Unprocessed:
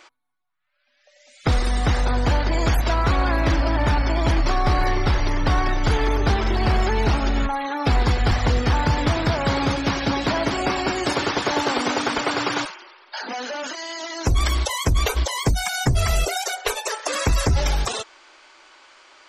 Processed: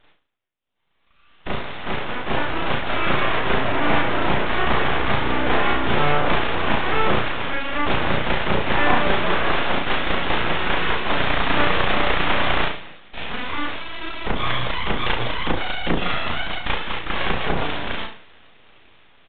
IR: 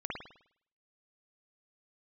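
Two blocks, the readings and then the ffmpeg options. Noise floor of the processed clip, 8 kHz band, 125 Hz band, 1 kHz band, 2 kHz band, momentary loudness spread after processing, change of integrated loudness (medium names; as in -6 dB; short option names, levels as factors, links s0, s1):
-60 dBFS, under -40 dB, -7.5 dB, +1.5 dB, +4.5 dB, 9 LU, 0.0 dB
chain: -filter_complex "[0:a]highpass=f=170:p=1,dynaudnorm=f=900:g=5:m=2.51,asplit=4[s0][s1][s2][s3];[s1]adelay=120,afreqshift=54,volume=0.0891[s4];[s2]adelay=240,afreqshift=108,volume=0.0403[s5];[s3]adelay=360,afreqshift=162,volume=0.018[s6];[s0][s4][s5][s6]amix=inputs=4:normalize=0[s7];[1:a]atrim=start_sample=2205,asetrate=66150,aresample=44100[s8];[s7][s8]afir=irnorm=-1:irlink=0,aresample=16000,aeval=exprs='abs(val(0))':c=same,aresample=44100,aresample=8000,aresample=44100"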